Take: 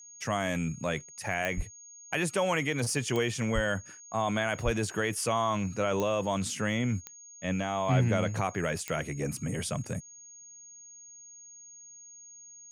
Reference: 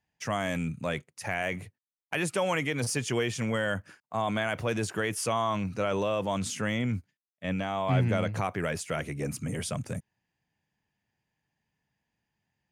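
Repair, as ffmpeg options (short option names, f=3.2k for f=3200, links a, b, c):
-filter_complex "[0:a]adeclick=t=4,bandreject=f=6.6k:w=30,asplit=3[a][b][c];[a]afade=t=out:st=1.56:d=0.02[d];[b]highpass=f=140:w=0.5412,highpass=f=140:w=1.3066,afade=t=in:st=1.56:d=0.02,afade=t=out:st=1.68:d=0.02[e];[c]afade=t=in:st=1.68:d=0.02[f];[d][e][f]amix=inputs=3:normalize=0,asplit=3[g][h][i];[g]afade=t=out:st=3.54:d=0.02[j];[h]highpass=f=140:w=0.5412,highpass=f=140:w=1.3066,afade=t=in:st=3.54:d=0.02,afade=t=out:st=3.66:d=0.02[k];[i]afade=t=in:st=3.66:d=0.02[l];[j][k][l]amix=inputs=3:normalize=0,asplit=3[m][n][o];[m]afade=t=out:st=4.64:d=0.02[p];[n]highpass=f=140:w=0.5412,highpass=f=140:w=1.3066,afade=t=in:st=4.64:d=0.02,afade=t=out:st=4.76:d=0.02[q];[o]afade=t=in:st=4.76:d=0.02[r];[p][q][r]amix=inputs=3:normalize=0"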